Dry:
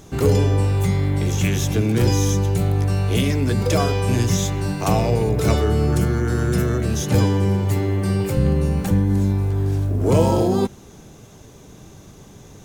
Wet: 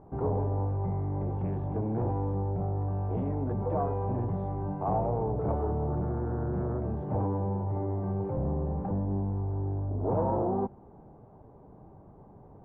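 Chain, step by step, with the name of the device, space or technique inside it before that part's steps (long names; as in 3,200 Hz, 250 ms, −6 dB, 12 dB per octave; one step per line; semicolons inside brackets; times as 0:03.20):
overdriven synthesiser ladder filter (soft clipping −15.5 dBFS, distortion −14 dB; transistor ladder low-pass 1,000 Hz, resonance 50%)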